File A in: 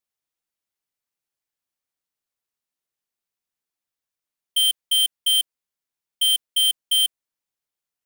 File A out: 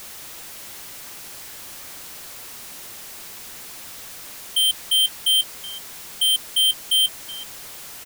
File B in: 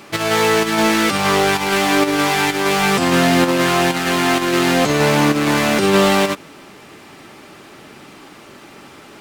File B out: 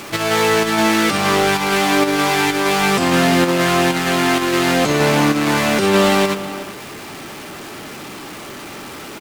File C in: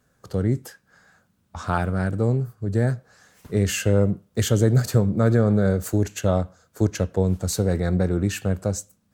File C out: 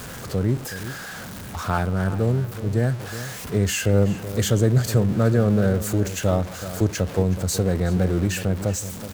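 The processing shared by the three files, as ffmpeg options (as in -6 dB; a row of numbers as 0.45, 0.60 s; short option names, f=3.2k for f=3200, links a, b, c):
-filter_complex "[0:a]aeval=exprs='val(0)+0.5*0.0355*sgn(val(0))':c=same,asplit=2[a][b];[b]adelay=373.2,volume=-13dB,highshelf=f=4k:g=-8.4[c];[a][c]amix=inputs=2:normalize=0,volume=-1dB"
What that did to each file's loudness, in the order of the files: 0.0, 0.0, 0.0 LU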